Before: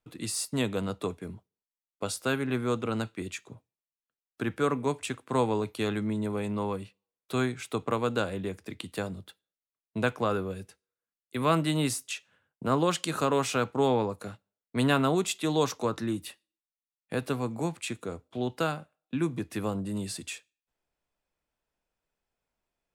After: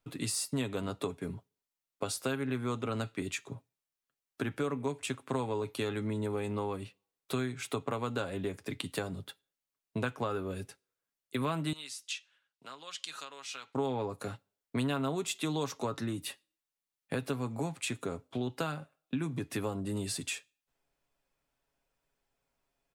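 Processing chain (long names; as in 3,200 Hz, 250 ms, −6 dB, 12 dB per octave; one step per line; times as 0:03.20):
comb filter 7.3 ms, depth 43%
downward compressor 4 to 1, threshold −34 dBFS, peak gain reduction 14 dB
0:11.73–0:13.75: resonant band-pass 4,100 Hz, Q 1
level +2.5 dB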